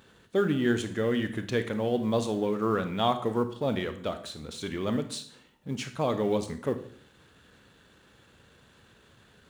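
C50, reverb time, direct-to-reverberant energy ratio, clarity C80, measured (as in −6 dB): 11.5 dB, 0.55 s, 9.0 dB, 15.0 dB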